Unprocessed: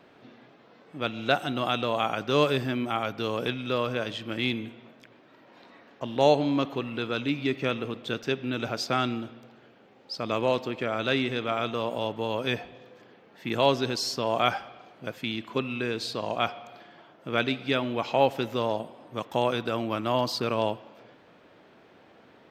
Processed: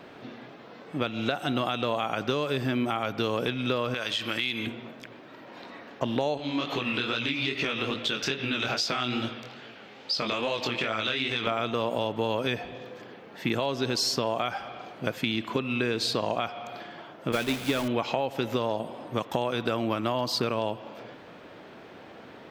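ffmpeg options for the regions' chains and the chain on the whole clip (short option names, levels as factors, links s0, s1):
-filter_complex "[0:a]asettb=1/sr,asplit=3[s0][s1][s2];[s0]atrim=end=3.944[s3];[s1]atrim=start=3.94:end=4.67,asetpts=PTS-STARTPTS,afade=t=in:d=0.004:c=qsin,afade=t=out:st=0.726:d=0.004:c=qsin,tiltshelf=f=870:g=-7.5,acompressor=threshold=0.0178:ratio=2.5:attack=3.2:release=140:knee=1:detection=peak[s4];[s2]atrim=start=4.666[s5];[s3][s4]acrossfade=d=0.004:c1=hsin:c2=qsin[s6];[s6][s5]acrossfade=d=0.004:c1=qsin:c2=hsin,asettb=1/sr,asplit=3[s7][s8][s9];[s7]atrim=end=6.374[s10];[s8]atrim=start=6.37:end=11.47,asetpts=PTS-STARTPTS,afade=t=in:d=0.004:c=qsin,afade=t=out:st=5.096:d=0.004:c=qsin,equalizer=f=3600:w=0.4:g=11,acompressor=threshold=0.0398:ratio=5:attack=3.2:release=140:knee=1:detection=peak,flanger=delay=17.5:depth=7:speed=2.4[s11];[s9]atrim=start=11.466[s12];[s10][s11]acrossfade=d=0.004:c1=hsin:c2=qsin[s13];[s13][s12]acrossfade=d=0.004:c1=qsin:c2=hsin,asettb=1/sr,asplit=3[s14][s15][s16];[s14]atrim=end=17.324[s17];[s15]atrim=start=17.32:end=17.88,asetpts=PTS-STARTPTS,afade=t=in:d=0.004:c=qsin,afade=t=out:st=0.556:d=0.004:c=qsin,aeval=exprs='val(0)+0.5*0.0631*sgn(val(0))':c=same,agate=range=0.0224:threshold=0.0891:ratio=3:release=100:detection=peak[s18];[s16]atrim=start=17.876[s19];[s17][s18]acrossfade=d=0.004:c1=hsin:c2=qsin[s20];[s20][s19]acrossfade=d=0.004:c1=qsin:c2=hsin,alimiter=limit=0.141:level=0:latency=1:release=354,acompressor=threshold=0.0251:ratio=6,volume=2.66"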